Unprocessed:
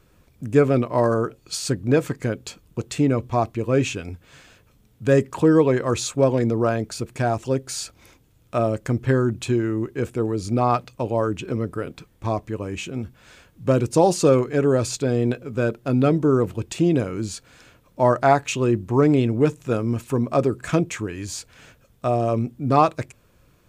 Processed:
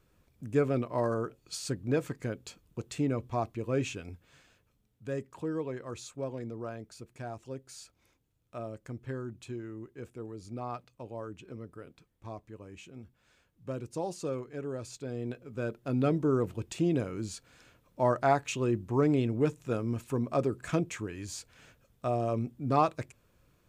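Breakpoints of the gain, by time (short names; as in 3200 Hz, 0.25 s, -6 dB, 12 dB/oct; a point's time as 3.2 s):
4.11 s -10.5 dB
5.13 s -18.5 dB
14.83 s -18.5 dB
16.06 s -9 dB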